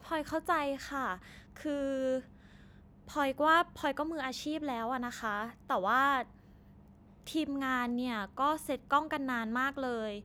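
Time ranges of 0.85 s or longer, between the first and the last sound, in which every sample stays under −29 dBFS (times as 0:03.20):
0:02.18–0:03.17
0:06.22–0:07.35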